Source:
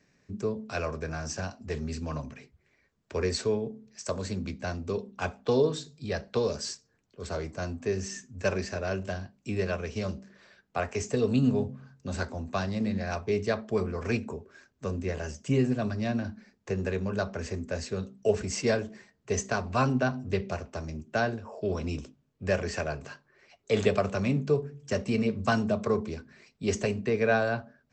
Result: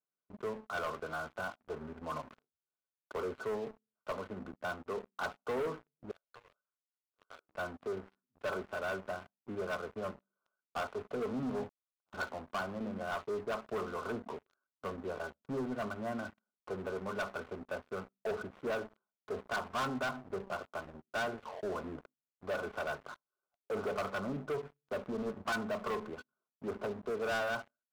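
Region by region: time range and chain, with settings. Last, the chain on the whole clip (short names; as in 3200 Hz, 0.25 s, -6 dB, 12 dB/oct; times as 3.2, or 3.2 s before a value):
6.11–7.49 differentiator + three-band squash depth 70%
11.69–12.14 steep high-pass 2700 Hz 48 dB/oct + running maximum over 9 samples
whole clip: Chebyshev low-pass 1500 Hz, order 10; differentiator; sample leveller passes 5; gain +2 dB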